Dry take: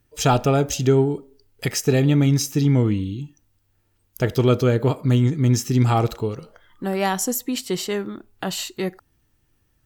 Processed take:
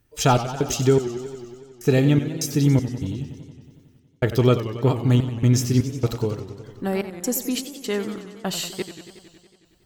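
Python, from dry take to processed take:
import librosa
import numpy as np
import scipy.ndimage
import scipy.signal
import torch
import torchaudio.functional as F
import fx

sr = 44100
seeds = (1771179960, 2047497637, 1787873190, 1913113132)

y = fx.step_gate(x, sr, bpm=199, pattern='xxxxx...', floor_db=-60.0, edge_ms=4.5)
y = fx.echo_warbled(y, sr, ms=92, feedback_pct=74, rate_hz=2.8, cents=161, wet_db=-12.0)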